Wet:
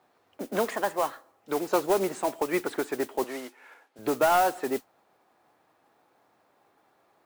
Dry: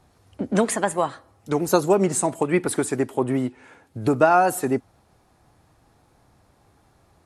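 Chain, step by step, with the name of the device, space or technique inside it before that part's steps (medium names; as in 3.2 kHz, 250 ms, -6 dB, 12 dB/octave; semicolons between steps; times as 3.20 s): carbon microphone (band-pass 370–3200 Hz; saturation -12.5 dBFS, distortion -16 dB; modulation noise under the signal 15 dB); 3.24–3.99 s: frequency weighting A; trim -2.5 dB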